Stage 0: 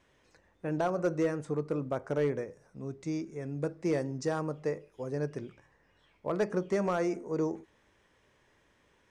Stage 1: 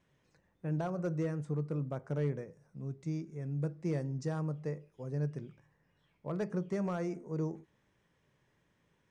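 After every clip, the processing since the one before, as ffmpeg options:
ffmpeg -i in.wav -af "equalizer=frequency=150:width=1.5:gain=12.5,volume=-8.5dB" out.wav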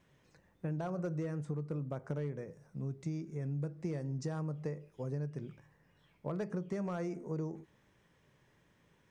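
ffmpeg -i in.wav -af "acompressor=threshold=-39dB:ratio=6,volume=4.5dB" out.wav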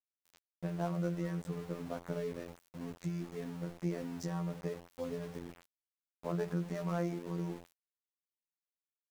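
ffmpeg -i in.wav -af "bandreject=frequency=50:width_type=h:width=6,bandreject=frequency=100:width_type=h:width=6,bandreject=frequency=150:width_type=h:width=6,bandreject=frequency=200:width_type=h:width=6,bandreject=frequency=250:width_type=h:width=6,bandreject=frequency=300:width_type=h:width=6,bandreject=frequency=350:width_type=h:width=6,bandreject=frequency=400:width_type=h:width=6,bandreject=frequency=450:width_type=h:width=6,afftfilt=real='hypot(re,im)*cos(PI*b)':imag='0':win_size=2048:overlap=0.75,aeval=exprs='val(0)*gte(abs(val(0)),0.00251)':channel_layout=same,volume=5dB" out.wav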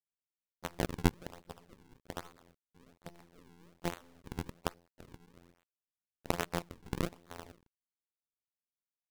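ffmpeg -i in.wav -af "acrusher=samples=41:mix=1:aa=0.000001:lfo=1:lforange=65.6:lforate=1.2,aeval=exprs='0.0841*(cos(1*acos(clip(val(0)/0.0841,-1,1)))-cos(1*PI/2))+0.00531*(cos(2*acos(clip(val(0)/0.0841,-1,1)))-cos(2*PI/2))+0.0299*(cos(3*acos(clip(val(0)/0.0841,-1,1)))-cos(3*PI/2))+0.00237*(cos(4*acos(clip(val(0)/0.0841,-1,1)))-cos(4*PI/2))+0.00075*(cos(8*acos(clip(val(0)/0.0841,-1,1)))-cos(8*PI/2))':channel_layout=same,volume=7dB" out.wav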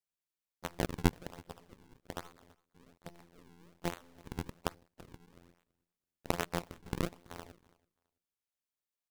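ffmpeg -i in.wav -af "aecho=1:1:331|662:0.0631|0.012" out.wav

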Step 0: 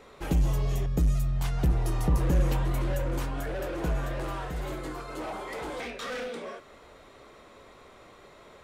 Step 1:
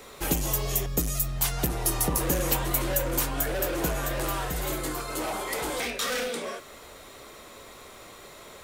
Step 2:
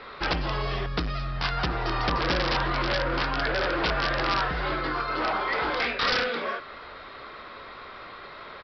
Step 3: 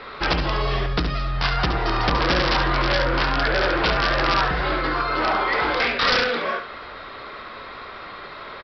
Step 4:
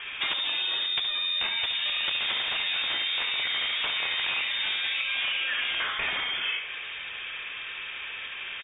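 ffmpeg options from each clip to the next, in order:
ffmpeg -i in.wav -filter_complex "[0:a]aemphasis=mode=production:type=75fm,acrossover=split=240|5400[link_01][link_02][link_03];[link_01]acompressor=threshold=-35dB:ratio=6[link_04];[link_04][link_02][link_03]amix=inputs=3:normalize=0,volume=4.5dB" out.wav
ffmpeg -i in.wav -af "equalizer=frequency=1400:width=1.1:gain=10.5,aresample=11025,aeval=exprs='(mod(7.5*val(0)+1,2)-1)/7.5':channel_layout=same,aresample=44100" out.wav
ffmpeg -i in.wav -af "aecho=1:1:70:0.376,volume=5dB" out.wav
ffmpeg -i in.wav -af "acompressor=threshold=-26dB:ratio=6,lowpass=frequency=3100:width_type=q:width=0.5098,lowpass=frequency=3100:width_type=q:width=0.6013,lowpass=frequency=3100:width_type=q:width=0.9,lowpass=frequency=3100:width_type=q:width=2.563,afreqshift=-3700" out.wav

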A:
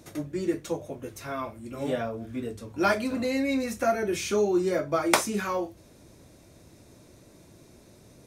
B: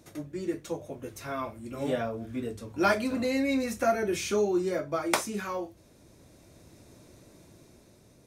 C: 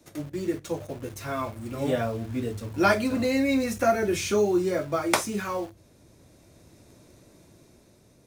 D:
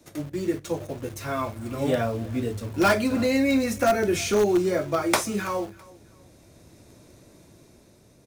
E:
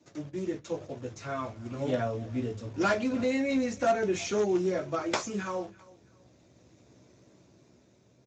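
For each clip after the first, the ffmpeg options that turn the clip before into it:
ffmpeg -i in.wav -af "dynaudnorm=framelen=360:gausssize=5:maxgain=4.5dB,volume=-5dB" out.wav
ffmpeg -i in.wav -filter_complex "[0:a]adynamicequalizer=threshold=0.002:dfrequency=100:dqfactor=1.7:tfrequency=100:tqfactor=1.7:attack=5:release=100:ratio=0.375:range=3.5:mode=boostabove:tftype=bell,asplit=2[link_01][link_02];[link_02]acrusher=bits=6:mix=0:aa=0.000001,volume=-7dB[link_03];[link_01][link_03]amix=inputs=2:normalize=0" out.wav
ffmpeg -i in.wav -filter_complex "[0:a]asplit=2[link_01][link_02];[link_02]aeval=exprs='(mod(5.62*val(0)+1,2)-1)/5.62':channel_layout=same,volume=-11dB[link_03];[link_01][link_03]amix=inputs=2:normalize=0,aecho=1:1:329|658:0.075|0.024" out.wav
ffmpeg -i in.wav -filter_complex "[0:a]asplit=2[link_01][link_02];[link_02]adelay=16,volume=-8dB[link_03];[link_01][link_03]amix=inputs=2:normalize=0,volume=-7dB" -ar 16000 -c:a libspeex -b:a 17k out.spx

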